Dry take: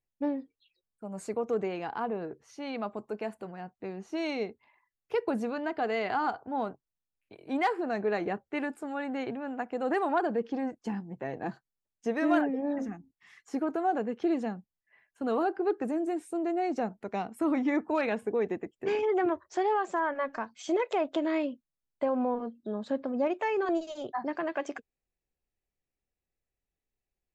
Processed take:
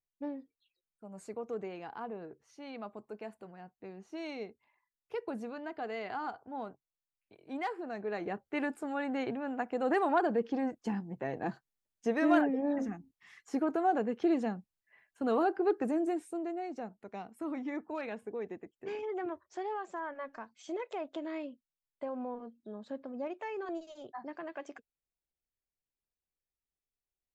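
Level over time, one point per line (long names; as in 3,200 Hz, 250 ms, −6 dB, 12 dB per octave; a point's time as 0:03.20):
0:08.02 −8.5 dB
0:08.65 −0.5 dB
0:16.07 −0.5 dB
0:16.69 −10 dB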